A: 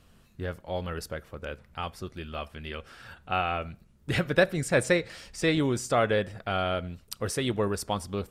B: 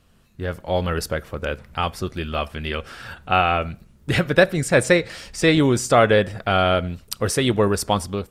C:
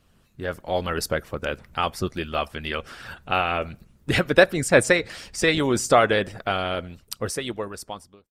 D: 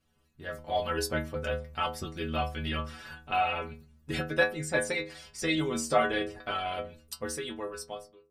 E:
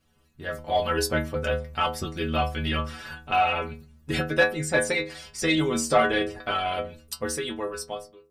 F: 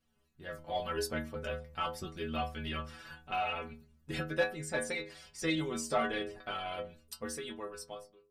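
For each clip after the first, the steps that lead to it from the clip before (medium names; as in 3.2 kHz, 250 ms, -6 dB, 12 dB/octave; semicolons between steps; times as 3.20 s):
level rider gain up to 11 dB
fade out at the end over 2.13 s; harmonic-percussive split harmonic -10 dB; trim +1 dB
level rider gain up to 6 dB; inharmonic resonator 75 Hz, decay 0.52 s, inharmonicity 0.008
saturation -15 dBFS, distortion -23 dB; trim +6 dB
flange 0.82 Hz, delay 4.1 ms, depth 2.1 ms, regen +61%; trim -6.5 dB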